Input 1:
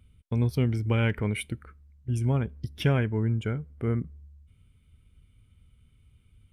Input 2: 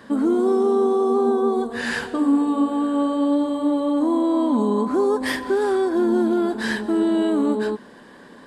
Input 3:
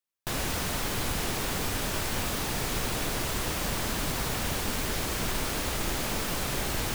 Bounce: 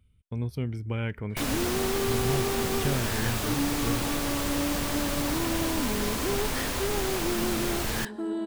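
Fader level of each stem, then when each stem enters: −6.0, −11.5, 0.0 decibels; 0.00, 1.30, 1.10 seconds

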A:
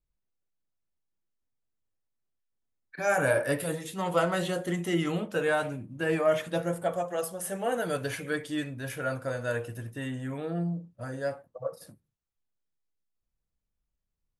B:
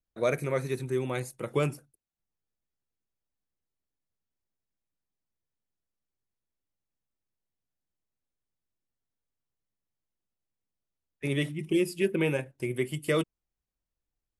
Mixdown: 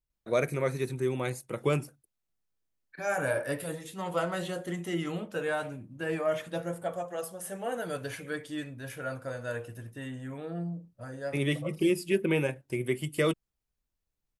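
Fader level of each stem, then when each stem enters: −4.5, 0.0 decibels; 0.00, 0.10 seconds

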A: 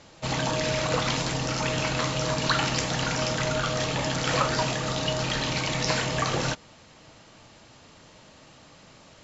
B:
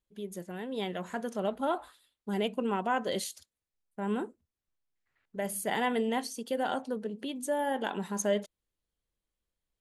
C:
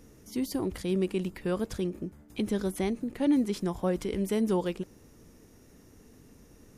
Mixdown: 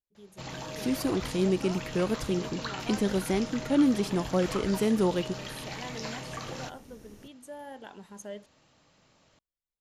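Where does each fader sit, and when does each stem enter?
−12.5, −12.5, +2.0 decibels; 0.15, 0.00, 0.50 seconds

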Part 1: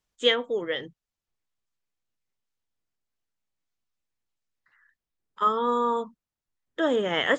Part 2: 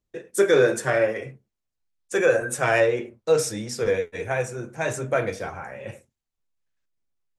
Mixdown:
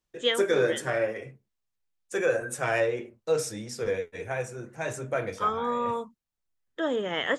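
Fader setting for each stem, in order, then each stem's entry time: −4.0, −6.0 decibels; 0.00, 0.00 seconds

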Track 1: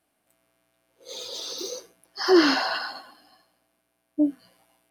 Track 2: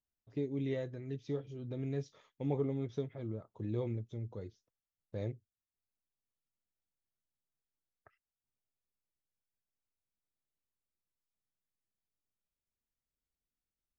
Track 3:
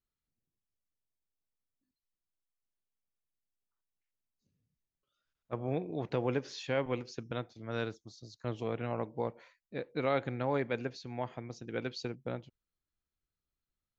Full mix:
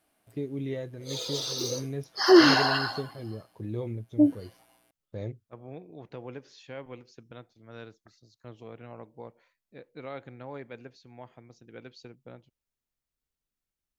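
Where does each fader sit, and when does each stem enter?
+1.5, +2.5, −9.0 decibels; 0.00, 0.00, 0.00 seconds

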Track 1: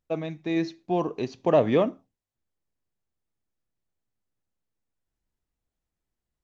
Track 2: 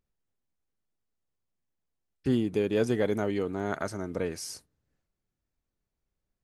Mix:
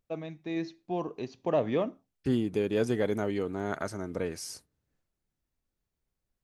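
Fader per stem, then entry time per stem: −7.0, −1.5 decibels; 0.00, 0.00 seconds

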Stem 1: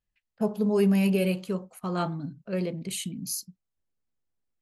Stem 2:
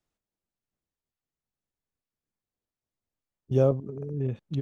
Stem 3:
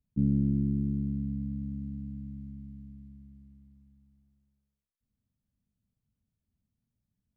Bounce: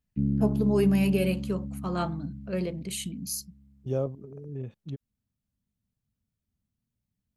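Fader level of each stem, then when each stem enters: −1.0, −7.0, −0.5 decibels; 0.00, 0.35, 0.00 seconds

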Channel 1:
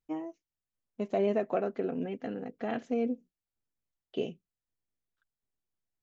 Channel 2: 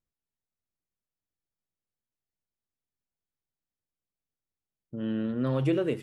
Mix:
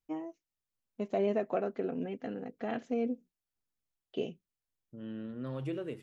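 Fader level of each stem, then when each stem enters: −2.0, −11.0 decibels; 0.00, 0.00 seconds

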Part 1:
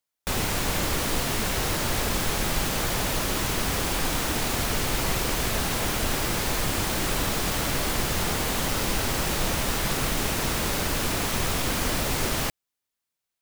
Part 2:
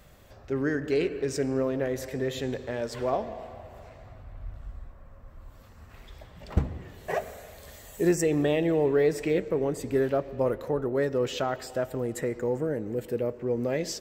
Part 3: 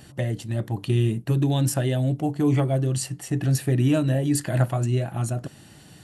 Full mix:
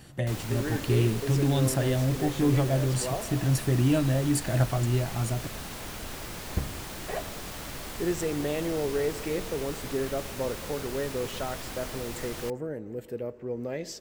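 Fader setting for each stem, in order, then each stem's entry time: −12.5, −5.5, −3.0 decibels; 0.00, 0.00, 0.00 seconds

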